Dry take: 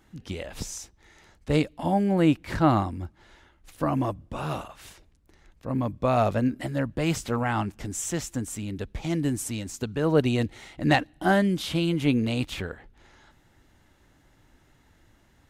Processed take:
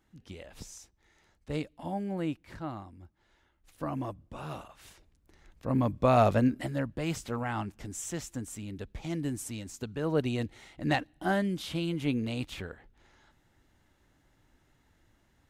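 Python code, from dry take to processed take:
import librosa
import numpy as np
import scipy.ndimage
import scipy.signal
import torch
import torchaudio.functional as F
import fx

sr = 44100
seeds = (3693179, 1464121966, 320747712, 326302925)

y = fx.gain(x, sr, db=fx.line((2.15, -11.0), (2.78, -19.0), (3.84, -9.0), (4.59, -9.0), (5.68, 0.0), (6.39, 0.0), (7.01, -7.0)))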